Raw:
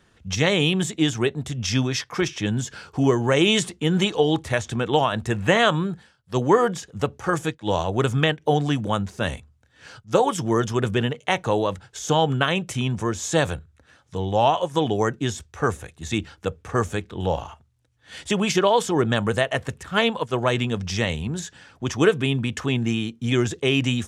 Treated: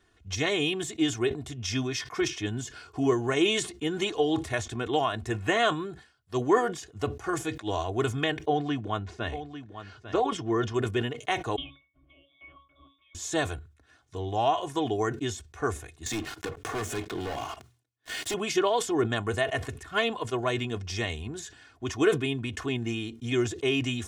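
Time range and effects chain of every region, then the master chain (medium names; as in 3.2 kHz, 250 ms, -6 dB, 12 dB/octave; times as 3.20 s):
8.46–10.74 s: low-pass 4 kHz + delay 848 ms -11.5 dB
11.56–13.15 s: frequency inversion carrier 3.6 kHz + compression 4:1, threshold -22 dBFS + pitch-class resonator C#, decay 0.25 s
16.06–18.34 s: high-pass 120 Hz 24 dB/octave + waveshaping leveller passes 5 + compression 4:1, threshold -26 dBFS
whole clip: comb 2.8 ms, depth 71%; decay stretcher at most 140 dB/s; trim -8 dB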